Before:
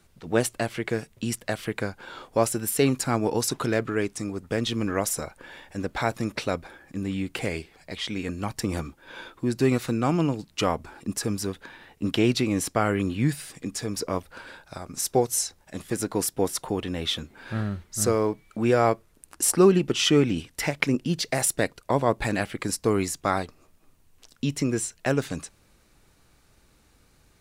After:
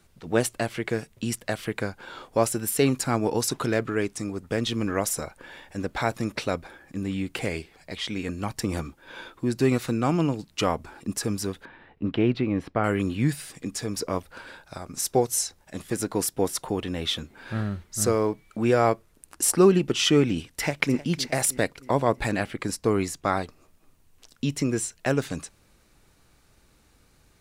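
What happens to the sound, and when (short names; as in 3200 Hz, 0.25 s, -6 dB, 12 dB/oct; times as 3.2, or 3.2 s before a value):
11.65–12.84 air absorption 410 m
20.36–20.96 echo throw 0.31 s, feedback 55%, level -16 dB
22.31–23.43 high shelf 5000 Hz -5 dB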